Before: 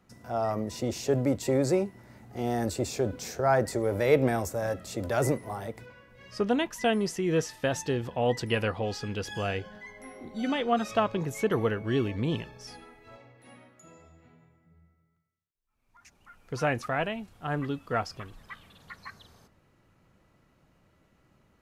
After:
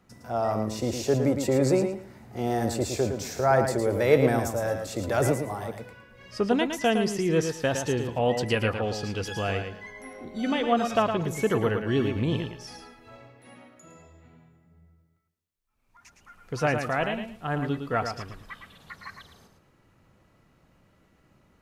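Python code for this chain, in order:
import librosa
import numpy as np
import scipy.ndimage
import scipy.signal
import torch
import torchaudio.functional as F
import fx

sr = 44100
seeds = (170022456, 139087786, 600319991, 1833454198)

y = fx.echo_feedback(x, sr, ms=111, feedback_pct=21, wet_db=-7.0)
y = y * 10.0 ** (2.0 / 20.0)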